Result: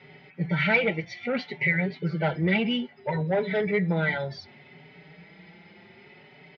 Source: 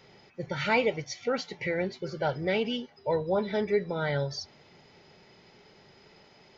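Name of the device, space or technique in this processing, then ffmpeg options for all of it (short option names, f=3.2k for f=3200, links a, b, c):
barber-pole flanger into a guitar amplifier: -filter_complex "[0:a]asplit=2[a][b];[b]adelay=5,afreqshift=0.64[c];[a][c]amix=inputs=2:normalize=1,asoftclip=type=tanh:threshold=-24.5dB,highpass=78,equalizer=f=110:t=q:w=4:g=-5,equalizer=f=170:t=q:w=4:g=9,equalizer=f=520:t=q:w=4:g=-4,equalizer=f=1.1k:t=q:w=4:g=-6,equalizer=f=2.1k:t=q:w=4:g=8,lowpass=f=3.6k:w=0.5412,lowpass=f=3.6k:w=1.3066,volume=7.5dB"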